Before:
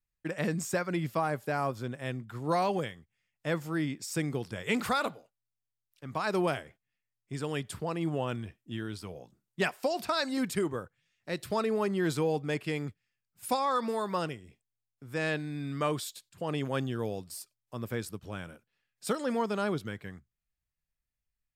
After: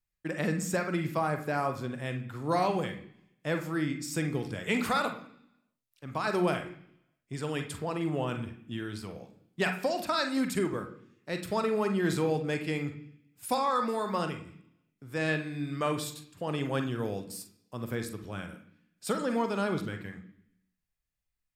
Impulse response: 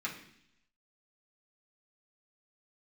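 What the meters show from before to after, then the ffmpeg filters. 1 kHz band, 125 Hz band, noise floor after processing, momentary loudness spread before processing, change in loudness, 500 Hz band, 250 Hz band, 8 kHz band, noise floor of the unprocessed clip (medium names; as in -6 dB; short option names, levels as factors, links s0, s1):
+1.0 dB, +1.0 dB, -84 dBFS, 13 LU, +1.0 dB, +0.5 dB, +1.5 dB, +0.5 dB, under -85 dBFS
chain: -filter_complex "[0:a]asplit=2[s0][s1];[1:a]atrim=start_sample=2205,adelay=42[s2];[s1][s2]afir=irnorm=-1:irlink=0,volume=0.376[s3];[s0][s3]amix=inputs=2:normalize=0"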